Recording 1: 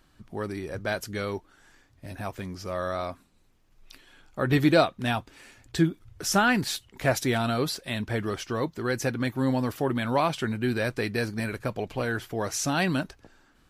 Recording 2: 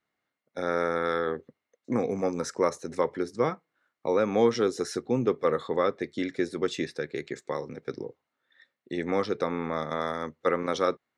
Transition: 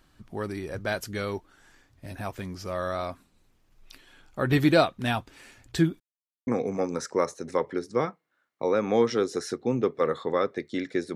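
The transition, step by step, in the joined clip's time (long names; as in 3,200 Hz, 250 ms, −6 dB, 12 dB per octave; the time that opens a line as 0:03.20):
recording 1
0:06.00–0:06.47: silence
0:06.47: continue with recording 2 from 0:01.91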